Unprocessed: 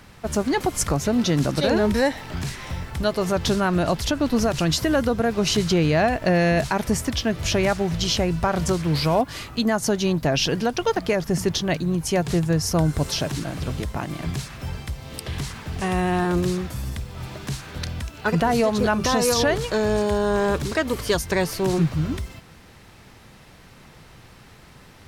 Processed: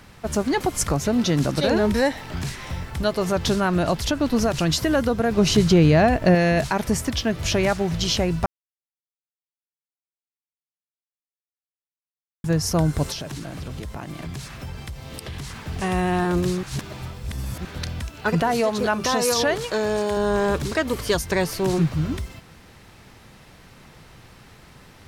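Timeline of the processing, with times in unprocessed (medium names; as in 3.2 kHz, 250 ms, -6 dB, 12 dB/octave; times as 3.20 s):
5.31–6.35 s: bass shelf 490 Hz +6 dB
8.46–12.44 s: mute
13.12–15.56 s: compression 3:1, threshold -30 dBFS
16.63–17.65 s: reverse
18.42–20.17 s: bass shelf 150 Hz -11.5 dB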